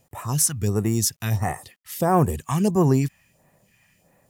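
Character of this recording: phasing stages 2, 1.5 Hz, lowest notch 420–4100 Hz; a quantiser's noise floor 12-bit, dither none

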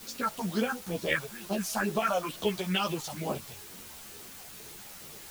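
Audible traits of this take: phasing stages 4, 2.2 Hz, lowest notch 280–2100 Hz; a quantiser's noise floor 8-bit, dither triangular; a shimmering, thickened sound

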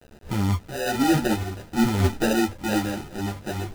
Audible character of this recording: aliases and images of a low sample rate 1100 Hz, jitter 0%; random-step tremolo; a quantiser's noise floor 8-bit, dither none; a shimmering, thickened sound

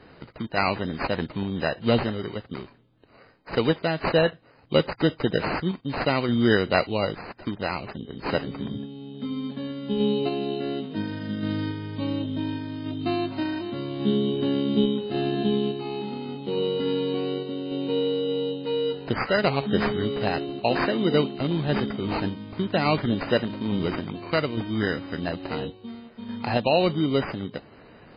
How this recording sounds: aliases and images of a low sample rate 3400 Hz, jitter 0%; random-step tremolo 3.5 Hz; MP3

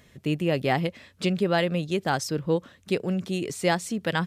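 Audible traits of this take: noise floor -59 dBFS; spectral tilt -5.0 dB/oct

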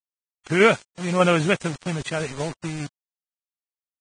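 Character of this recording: a quantiser's noise floor 6-bit, dither none; tremolo saw down 5 Hz, depth 35%; Vorbis

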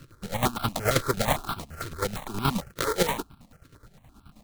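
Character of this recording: a buzz of ramps at a fixed pitch in blocks of 32 samples; chopped level 9.4 Hz, depth 65%, duty 45%; aliases and images of a low sample rate 2700 Hz, jitter 20%; notches that jump at a steady rate 8.8 Hz 210–1900 Hz

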